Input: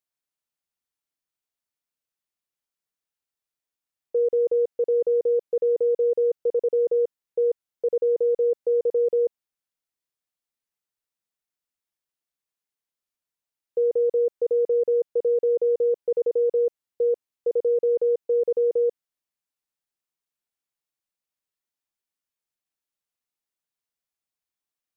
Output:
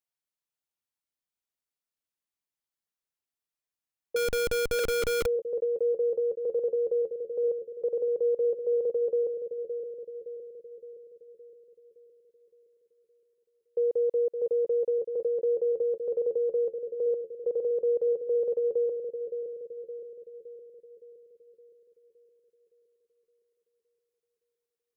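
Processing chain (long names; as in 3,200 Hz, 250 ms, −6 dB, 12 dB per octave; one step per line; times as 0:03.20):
bucket-brigade delay 565 ms, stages 2,048, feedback 57%, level −7 dB
0:04.16–0:05.26: comparator with hysteresis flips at −45 dBFS
level −4.5 dB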